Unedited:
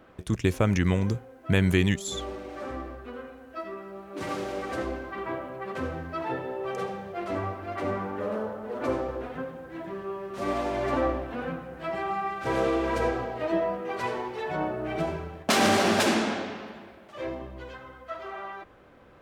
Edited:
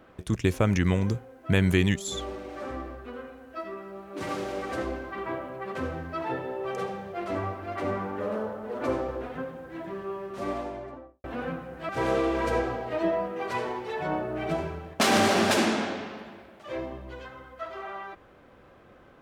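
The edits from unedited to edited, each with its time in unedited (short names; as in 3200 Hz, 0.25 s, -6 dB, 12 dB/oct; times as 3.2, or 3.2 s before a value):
10.15–11.24 studio fade out
11.89–12.38 cut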